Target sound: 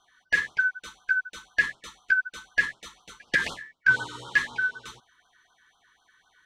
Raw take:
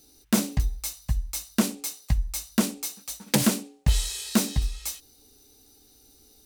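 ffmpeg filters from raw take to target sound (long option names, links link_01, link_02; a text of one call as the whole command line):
ffmpeg -i in.wav -af "afftfilt=real='real(if(lt(b,272),68*(eq(floor(b/68),0)*2+eq(floor(b/68),1)*0+eq(floor(b/68),2)*3+eq(floor(b/68),3)*1)+mod(b,68),b),0)':imag='imag(if(lt(b,272),68*(eq(floor(b/68),0)*2+eq(floor(b/68),1)*0+eq(floor(b/68),2)*3+eq(floor(b/68),3)*1)+mod(b,68),b),0)':win_size=2048:overlap=0.75,lowpass=3000,afftfilt=real='re*(1-between(b*sr/1024,600*pow(2200/600,0.5+0.5*sin(2*PI*4*pts/sr))/1.41,600*pow(2200/600,0.5+0.5*sin(2*PI*4*pts/sr))*1.41))':imag='im*(1-between(b*sr/1024,600*pow(2200/600,0.5+0.5*sin(2*PI*4*pts/sr))/1.41,600*pow(2200/600,0.5+0.5*sin(2*PI*4*pts/sr))*1.41))':win_size=1024:overlap=0.75" out.wav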